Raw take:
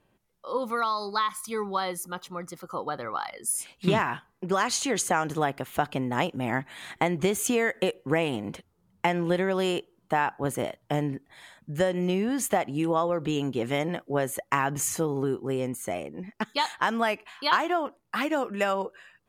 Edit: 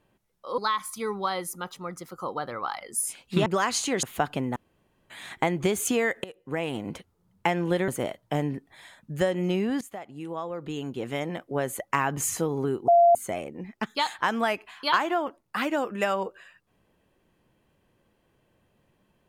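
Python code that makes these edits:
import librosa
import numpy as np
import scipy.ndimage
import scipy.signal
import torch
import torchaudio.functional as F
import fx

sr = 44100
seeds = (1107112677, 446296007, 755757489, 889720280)

y = fx.edit(x, sr, fx.cut(start_s=0.58, length_s=0.51),
    fx.cut(start_s=3.97, length_s=0.47),
    fx.cut(start_s=5.01, length_s=0.61),
    fx.room_tone_fill(start_s=6.15, length_s=0.54),
    fx.fade_in_from(start_s=7.83, length_s=0.65, floor_db=-22.0),
    fx.cut(start_s=9.47, length_s=1.0),
    fx.fade_in_from(start_s=12.4, length_s=2.17, floor_db=-17.5),
    fx.bleep(start_s=15.47, length_s=0.27, hz=688.0, db=-13.5), tone=tone)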